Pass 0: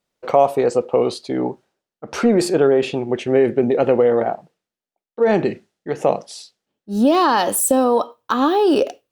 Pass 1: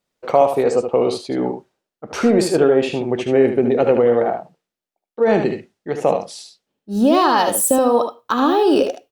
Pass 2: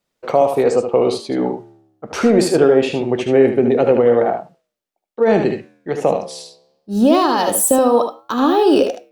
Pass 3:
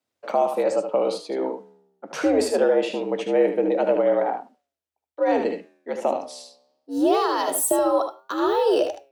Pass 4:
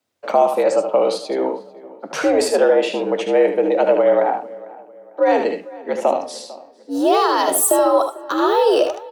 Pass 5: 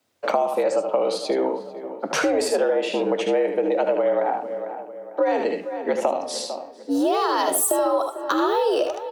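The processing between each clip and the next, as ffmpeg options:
-af "aecho=1:1:64|75:0.168|0.447"
-filter_complex "[0:a]acrossover=split=620|4000[a][b][c];[b]alimiter=limit=-14dB:level=0:latency=1:release=184[d];[a][d][c]amix=inputs=3:normalize=0,flanger=delay=5.8:depth=9.3:regen=-90:speed=0.23:shape=triangular,volume=6.5dB"
-af "afreqshift=77,volume=-7dB"
-filter_complex "[0:a]acrossover=split=400|3700[a][b][c];[a]alimiter=level_in=2.5dB:limit=-24dB:level=0:latency=1:release=373,volume=-2.5dB[d];[d][b][c]amix=inputs=3:normalize=0,asplit=2[e][f];[f]adelay=449,lowpass=f=2.3k:p=1,volume=-19.5dB,asplit=2[g][h];[h]adelay=449,lowpass=f=2.3k:p=1,volume=0.4,asplit=2[i][j];[j]adelay=449,lowpass=f=2.3k:p=1,volume=0.4[k];[e][g][i][k]amix=inputs=4:normalize=0,volume=6.5dB"
-af "acompressor=threshold=-25dB:ratio=4,volume=5dB"

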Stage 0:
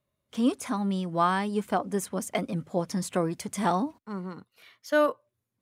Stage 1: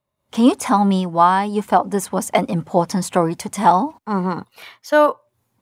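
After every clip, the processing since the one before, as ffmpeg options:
-af "equalizer=f=870:t=o:w=0.57:g=10,dynaudnorm=f=160:g=3:m=16.5dB,volume=-1dB"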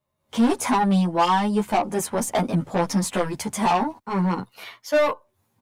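-filter_complex "[0:a]asoftclip=type=tanh:threshold=-16dB,asplit=2[a][b];[b]adelay=11.1,afreqshift=0.6[c];[a][c]amix=inputs=2:normalize=1,volume=3dB"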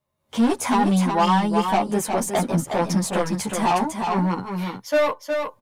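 -af "aecho=1:1:363:0.531"

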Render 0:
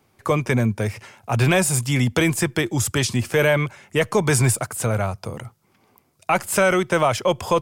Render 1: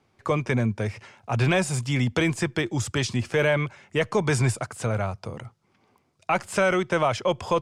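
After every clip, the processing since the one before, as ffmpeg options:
-af "lowpass=6.2k,volume=-4dB"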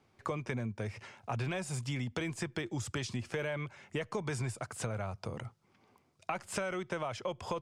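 -af "acompressor=threshold=-31dB:ratio=5,volume=-3dB"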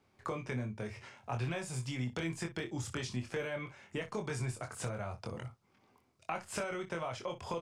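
-af "aecho=1:1:24|61:0.596|0.188,volume=-3dB"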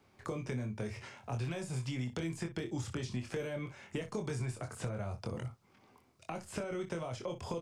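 -filter_complex "[0:a]acrossover=split=530|4400[a][b][c];[a]acompressor=threshold=-39dB:ratio=4[d];[b]acompressor=threshold=-52dB:ratio=4[e];[c]acompressor=threshold=-57dB:ratio=4[f];[d][e][f]amix=inputs=3:normalize=0,volume=4.5dB"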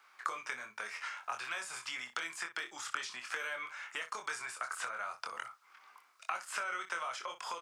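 -af "highpass=f=1.3k:t=q:w=2.8,volume=4.5dB"

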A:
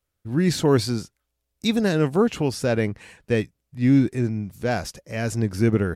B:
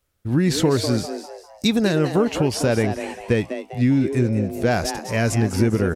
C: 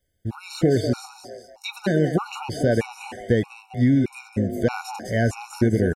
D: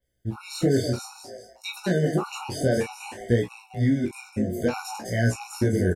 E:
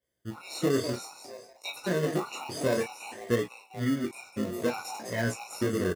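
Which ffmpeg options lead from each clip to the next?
-filter_complex "[0:a]acompressor=threshold=-22dB:ratio=6,asplit=2[a][b];[b]asplit=4[c][d][e][f];[c]adelay=200,afreqshift=140,volume=-10dB[g];[d]adelay=400,afreqshift=280,volume=-18.2dB[h];[e]adelay=600,afreqshift=420,volume=-26.4dB[i];[f]adelay=800,afreqshift=560,volume=-34.5dB[j];[g][h][i][j]amix=inputs=4:normalize=0[k];[a][k]amix=inputs=2:normalize=0,volume=7dB"
-filter_complex "[0:a]acrossover=split=2600[a][b];[b]acompressor=threshold=-33dB:ratio=4:attack=1:release=60[c];[a][c]amix=inputs=2:normalize=0,asplit=2[d][e];[e]adelay=115,lowpass=f=2k:p=1,volume=-18dB,asplit=2[f][g];[g]adelay=115,lowpass=f=2k:p=1,volume=0.47,asplit=2[h][i];[i]adelay=115,lowpass=f=2k:p=1,volume=0.47,asplit=2[j][k];[k]adelay=115,lowpass=f=2k:p=1,volume=0.47[l];[d][f][h][j][l]amix=inputs=5:normalize=0,afftfilt=real='re*gt(sin(2*PI*1.6*pts/sr)*(1-2*mod(floor(b*sr/1024/740),2)),0)':imag='im*gt(sin(2*PI*1.6*pts/sr)*(1-2*mod(floor(b*sr/1024/740),2)),0)':win_size=1024:overlap=0.75"
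-filter_complex "[0:a]flanger=delay=16.5:depth=6.1:speed=0.57,asplit=2[a][b];[b]adelay=33,volume=-9dB[c];[a][c]amix=inputs=2:normalize=0,adynamicequalizer=threshold=0.00316:dfrequency=4900:dqfactor=0.7:tfrequency=4900:tqfactor=0.7:attack=5:release=100:ratio=0.375:range=3.5:mode=boostabove:tftype=highshelf"
-filter_complex "[0:a]asplit=2[a][b];[b]acrusher=samples=28:mix=1:aa=0.000001,volume=-8dB[c];[a][c]amix=inputs=2:normalize=0,highpass=f=350:p=1,volume=-3.5dB"

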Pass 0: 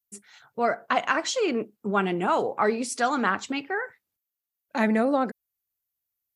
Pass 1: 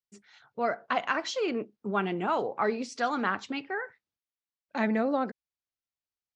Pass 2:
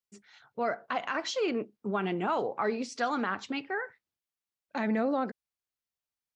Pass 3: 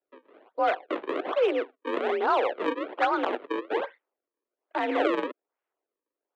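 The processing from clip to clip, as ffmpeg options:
-af "lowpass=f=5.8k:w=0.5412,lowpass=f=5.8k:w=1.3066,volume=-4.5dB"
-af "alimiter=limit=-19.5dB:level=0:latency=1:release=54"
-af "acrusher=samples=37:mix=1:aa=0.000001:lfo=1:lforange=59.2:lforate=1.2,highpass=f=290:t=q:w=0.5412,highpass=f=290:t=q:w=1.307,lowpass=f=3.6k:t=q:w=0.5176,lowpass=f=3.6k:t=q:w=0.7071,lowpass=f=3.6k:t=q:w=1.932,afreqshift=53,adynamicsmooth=sensitivity=1.5:basefreq=2.7k,volume=7dB"

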